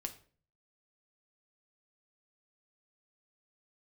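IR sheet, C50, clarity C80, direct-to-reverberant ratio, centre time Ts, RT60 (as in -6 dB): 14.0 dB, 18.0 dB, 5.0 dB, 7 ms, 0.45 s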